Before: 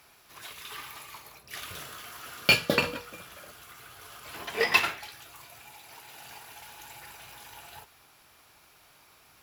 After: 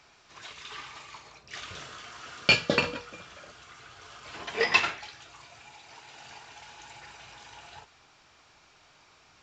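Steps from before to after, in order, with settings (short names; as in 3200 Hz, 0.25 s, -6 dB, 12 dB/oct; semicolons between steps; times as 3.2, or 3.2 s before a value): µ-law 128 kbps 16000 Hz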